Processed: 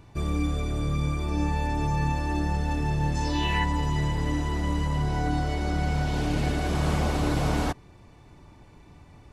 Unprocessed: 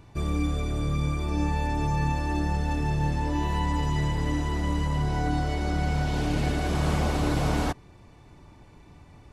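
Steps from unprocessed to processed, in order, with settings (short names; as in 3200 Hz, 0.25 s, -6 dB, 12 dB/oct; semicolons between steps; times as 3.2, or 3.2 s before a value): 3.14–3.63 bell 7400 Hz -> 1800 Hz +14 dB 1 oct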